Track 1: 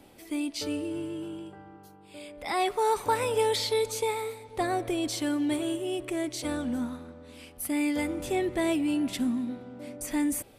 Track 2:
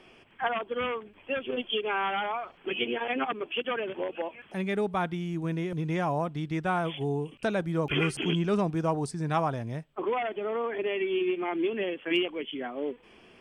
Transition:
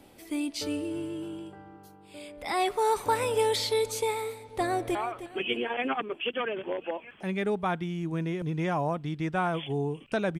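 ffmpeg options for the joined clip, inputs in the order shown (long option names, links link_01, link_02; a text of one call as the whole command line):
ffmpeg -i cue0.wav -i cue1.wav -filter_complex "[0:a]apad=whole_dur=10.39,atrim=end=10.39,atrim=end=4.952[link_01];[1:a]atrim=start=2.258:end=7.7[link_02];[link_01][link_02]acrossfade=duration=0.004:curve1=hsin:curve2=hsin,asplit=2[link_03][link_04];[link_04]afade=type=in:start_time=4.43:duration=0.01,afade=type=out:start_time=4.95:duration=0.01,aecho=0:1:310|620|930|1240:0.251189|0.100475|0.0401902|0.0160761[link_05];[link_03][link_05]amix=inputs=2:normalize=0" out.wav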